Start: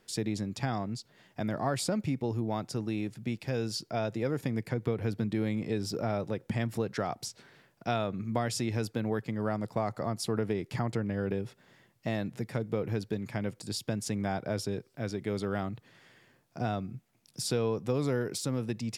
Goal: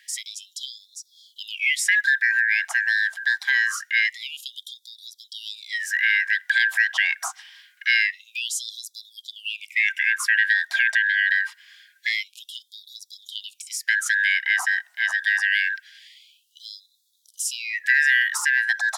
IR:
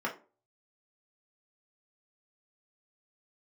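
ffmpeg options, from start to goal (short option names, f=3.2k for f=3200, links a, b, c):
-af "afftfilt=real='real(if(lt(b,272),68*(eq(floor(b/68),0)*3+eq(floor(b/68),1)*0+eq(floor(b/68),2)*1+eq(floor(b/68),3)*2)+mod(b,68),b),0)':imag='imag(if(lt(b,272),68*(eq(floor(b/68),0)*3+eq(floor(b/68),1)*0+eq(floor(b/68),2)*1+eq(floor(b/68),3)*2)+mod(b,68),b),0)':win_size=2048:overlap=0.75,apsyclip=19dB,afftfilt=real='re*gte(b*sr/1024,610*pow(3400/610,0.5+0.5*sin(2*PI*0.25*pts/sr)))':imag='im*gte(b*sr/1024,610*pow(3400/610,0.5+0.5*sin(2*PI*0.25*pts/sr)))':win_size=1024:overlap=0.75,volume=-8dB"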